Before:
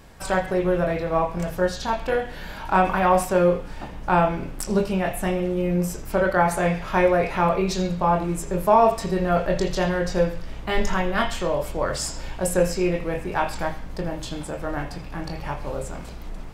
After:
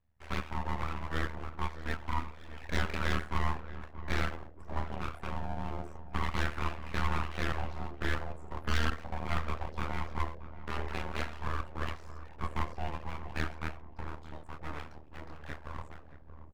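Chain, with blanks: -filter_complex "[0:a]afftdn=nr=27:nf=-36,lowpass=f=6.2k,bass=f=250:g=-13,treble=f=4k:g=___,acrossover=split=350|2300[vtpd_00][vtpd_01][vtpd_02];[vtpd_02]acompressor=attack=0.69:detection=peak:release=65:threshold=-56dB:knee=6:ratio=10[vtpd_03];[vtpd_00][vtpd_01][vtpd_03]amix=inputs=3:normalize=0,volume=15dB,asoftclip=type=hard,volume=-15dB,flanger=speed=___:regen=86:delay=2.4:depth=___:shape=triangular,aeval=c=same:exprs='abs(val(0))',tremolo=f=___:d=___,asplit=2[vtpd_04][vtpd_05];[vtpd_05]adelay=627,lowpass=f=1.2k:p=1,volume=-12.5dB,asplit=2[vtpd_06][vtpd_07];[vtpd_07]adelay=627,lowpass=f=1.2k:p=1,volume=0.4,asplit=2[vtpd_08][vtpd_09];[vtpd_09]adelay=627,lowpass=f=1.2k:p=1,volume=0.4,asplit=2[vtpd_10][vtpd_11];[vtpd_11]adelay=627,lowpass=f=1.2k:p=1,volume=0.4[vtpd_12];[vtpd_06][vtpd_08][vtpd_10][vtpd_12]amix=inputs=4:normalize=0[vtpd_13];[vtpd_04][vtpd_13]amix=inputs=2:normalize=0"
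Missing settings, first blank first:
-7, 1.1, 2.1, 78, 0.947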